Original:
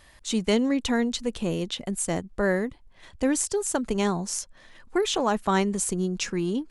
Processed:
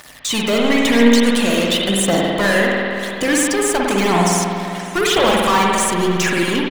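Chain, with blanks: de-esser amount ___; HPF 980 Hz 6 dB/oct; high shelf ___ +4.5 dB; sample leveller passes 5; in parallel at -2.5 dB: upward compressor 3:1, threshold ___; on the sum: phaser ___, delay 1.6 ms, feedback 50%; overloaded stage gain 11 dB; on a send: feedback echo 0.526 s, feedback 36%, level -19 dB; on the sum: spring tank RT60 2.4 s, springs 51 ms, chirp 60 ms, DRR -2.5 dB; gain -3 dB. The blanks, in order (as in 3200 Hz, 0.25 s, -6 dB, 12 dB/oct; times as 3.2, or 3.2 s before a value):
90%, 9300 Hz, -37 dBFS, 0.96 Hz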